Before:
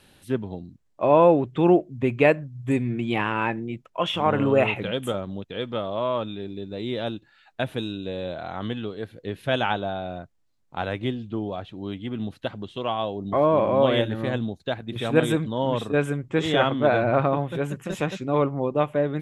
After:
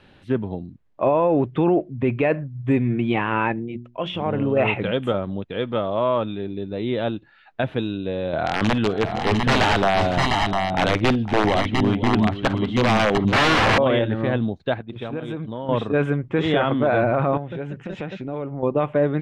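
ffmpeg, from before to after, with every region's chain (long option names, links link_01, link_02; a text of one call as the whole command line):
ffmpeg -i in.wav -filter_complex "[0:a]asettb=1/sr,asplit=3[link_01][link_02][link_03];[link_01]atrim=end=3.524[link_04];[link_02]atrim=start=3.52:end=4.57,asetpts=PTS-STARTPTS,afade=type=in:duration=0.004:curve=qsin,afade=type=out:start_time=1.046:duration=0.004:curve=qsin,equalizer=frequency=1300:width=0.74:gain=-9.5,bandreject=frequency=60:width_type=h:width=6,bandreject=frequency=120:width_type=h:width=6,bandreject=frequency=180:width_type=h:width=6,bandreject=frequency=240:width_type=h:width=6,bandreject=frequency=300:width_type=h:width=6,bandreject=frequency=360:width_type=h:width=6,acompressor=threshold=-29dB:ratio=1.5:attack=3.2:release=140:knee=1:detection=peak[link_05];[link_03]atrim=start=4.566[link_06];[link_04][link_05]acrossfade=duration=0.004:curve1=hsin:curve2=qsin[link_07];[link_07][link_06]acrossfade=duration=0.004:curve1=qsin:curve2=hsin,asettb=1/sr,asplit=3[link_08][link_09][link_10];[link_08]atrim=end=8.334[link_11];[link_09]atrim=start=8.33:end=13.78,asetpts=PTS-STARTPTS,afade=type=in:duration=0.004:curve=qsin,afade=type=out:start_time=5.446:duration=0.004:curve=qsin,acontrast=55,aeval=exprs='(mod(5.31*val(0)+1,2)-1)/5.31':channel_layout=same,aecho=1:1:51|508|701|702:0.126|0.224|0.501|0.501,atrim=end_sample=240345[link_12];[link_10]atrim=start=13.776[link_13];[link_11][link_12]acrossfade=duration=0.004:curve1=hsin:curve2=qsin[link_14];[link_14][link_13]acrossfade=duration=0.004:curve1=qsin:curve2=hsin,asettb=1/sr,asplit=3[link_15][link_16][link_17];[link_15]atrim=end=14.824[link_18];[link_16]atrim=start=14.82:end=15.69,asetpts=PTS-STARTPTS,afade=type=in:duration=0.004:curve=qsin,afade=type=out:start_time=0.866:duration=0.004:curve=qsin,agate=range=-9dB:threshold=-30dB:ratio=16:release=100:detection=peak,equalizer=frequency=1900:width=4.7:gain=-5.5,acompressor=threshold=-30dB:ratio=8:attack=3.2:release=140:knee=1:detection=peak[link_19];[link_17]atrim=start=15.686[link_20];[link_18][link_19]acrossfade=duration=0.004:curve1=hsin:curve2=qsin[link_21];[link_21][link_20]acrossfade=duration=0.004:curve1=qsin:curve2=hsin,asettb=1/sr,asplit=3[link_22][link_23][link_24];[link_22]atrim=end=17.374[link_25];[link_23]atrim=start=17.37:end=18.63,asetpts=PTS-STARTPTS,afade=type=in:duration=0.004:curve=qsin,afade=type=out:start_time=1.256:duration=0.004:curve=qsin,lowpass=7200,equalizer=frequency=1100:width_type=o:width=0.25:gain=-10,acompressor=threshold=-33dB:ratio=3:attack=3.2:release=140:knee=1:detection=peak[link_26];[link_24]atrim=start=18.626[link_27];[link_25][link_26]acrossfade=duration=0.004:curve1=hsin:curve2=qsin[link_28];[link_28][link_27]acrossfade=duration=0.004:curve1=qsin:curve2=hsin,lowpass=2800,alimiter=limit=-15dB:level=0:latency=1:release=10,volume=5dB" out.wav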